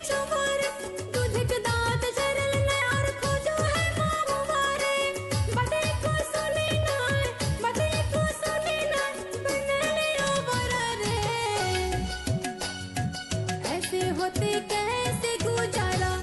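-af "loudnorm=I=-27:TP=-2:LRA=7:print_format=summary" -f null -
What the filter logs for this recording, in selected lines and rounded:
Input Integrated:    -27.2 LUFS
Input True Peak:     -15.7 dBTP
Input LRA:             1.6 LU
Input Threshold:     -37.2 LUFS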